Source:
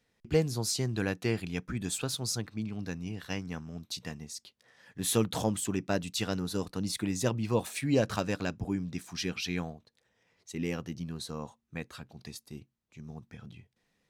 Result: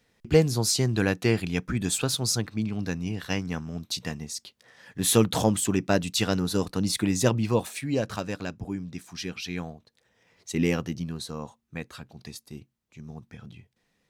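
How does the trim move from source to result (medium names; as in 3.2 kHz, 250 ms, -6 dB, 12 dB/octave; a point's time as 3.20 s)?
7.38 s +7 dB
7.86 s -0.5 dB
9.46 s -0.5 dB
10.59 s +10 dB
11.28 s +3 dB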